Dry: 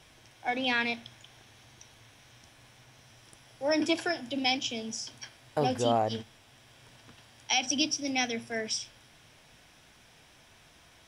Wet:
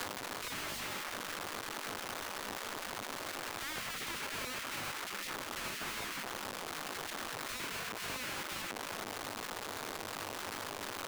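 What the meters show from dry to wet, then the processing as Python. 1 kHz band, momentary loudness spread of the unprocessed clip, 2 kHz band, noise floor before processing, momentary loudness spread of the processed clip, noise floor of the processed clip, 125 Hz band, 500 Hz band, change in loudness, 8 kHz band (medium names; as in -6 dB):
-5.5 dB, 11 LU, -4.0 dB, -59 dBFS, 2 LU, -43 dBFS, -9.0 dB, -11.0 dB, -9.5 dB, -4.0 dB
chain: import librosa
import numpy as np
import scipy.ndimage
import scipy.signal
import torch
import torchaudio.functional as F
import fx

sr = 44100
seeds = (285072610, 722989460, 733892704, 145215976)

p1 = fx.over_compress(x, sr, threshold_db=-33.0, ratio=-0.5)
p2 = x + (p1 * librosa.db_to_amplitude(3.0))
p3 = fx.peak_eq(p2, sr, hz=240.0, db=8.5, octaves=0.24)
p4 = fx.env_lowpass_down(p3, sr, base_hz=1900.0, full_db=-19.5)
p5 = scipy.signal.sosfilt(scipy.signal.butter(4, 75.0, 'highpass', fs=sr, output='sos'), p4)
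p6 = 10.0 ** (-28.0 / 20.0) * np.tanh(p5 / 10.0 ** (-28.0 / 20.0))
p7 = fx.curve_eq(p6, sr, hz=(160.0, 230.0, 370.0, 1200.0, 4100.0), db=(0, -27, 4, 12, -26))
p8 = fx.add_hum(p7, sr, base_hz=50, snr_db=13)
p9 = fx.schmitt(p8, sr, flips_db=-45.0)
p10 = fx.spec_gate(p9, sr, threshold_db=-15, keep='weak')
p11 = fx.band_squash(p10, sr, depth_pct=100)
y = p11 * librosa.db_to_amplitude(-2.5)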